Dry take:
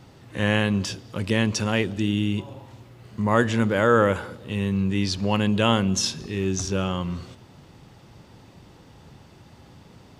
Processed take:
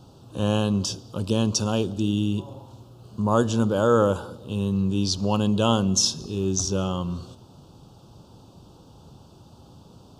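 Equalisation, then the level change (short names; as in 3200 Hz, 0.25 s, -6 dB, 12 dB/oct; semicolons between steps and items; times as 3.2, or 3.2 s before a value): Butterworth band-stop 2000 Hz, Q 1.1; dynamic EQ 6100 Hz, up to +5 dB, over -46 dBFS, Q 1.7; 0.0 dB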